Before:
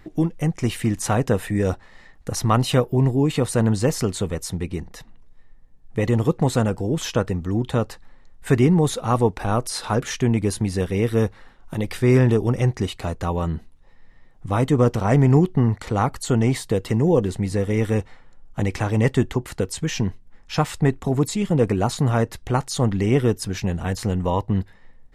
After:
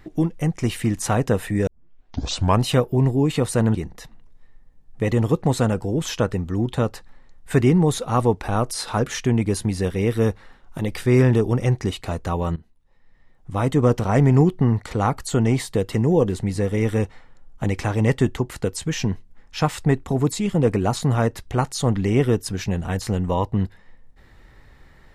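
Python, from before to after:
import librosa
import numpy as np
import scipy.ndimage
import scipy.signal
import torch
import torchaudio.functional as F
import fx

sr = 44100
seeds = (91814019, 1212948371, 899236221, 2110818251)

y = fx.edit(x, sr, fx.tape_start(start_s=1.67, length_s=0.97),
    fx.cut(start_s=3.75, length_s=0.96),
    fx.fade_in_from(start_s=13.52, length_s=1.26, floor_db=-17.5), tone=tone)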